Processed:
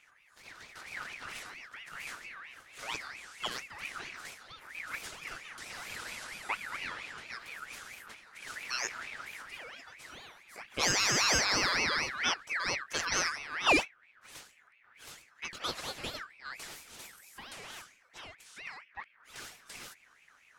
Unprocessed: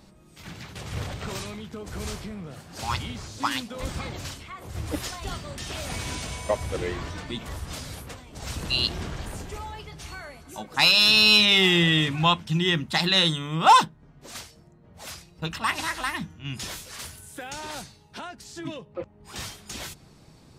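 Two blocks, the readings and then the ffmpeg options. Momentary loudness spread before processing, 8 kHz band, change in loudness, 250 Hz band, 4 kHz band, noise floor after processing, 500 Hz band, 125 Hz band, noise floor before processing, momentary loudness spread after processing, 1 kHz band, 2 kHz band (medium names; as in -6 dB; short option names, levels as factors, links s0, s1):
23 LU, 0.0 dB, -10.5 dB, -14.5 dB, -13.0 dB, -64 dBFS, -10.0 dB, -20.0 dB, -54 dBFS, 22 LU, -12.0 dB, -6.0 dB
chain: -af "aeval=exprs='val(0)*sin(2*PI*1900*n/s+1900*0.3/4.4*sin(2*PI*4.4*n/s))':c=same,volume=0.422"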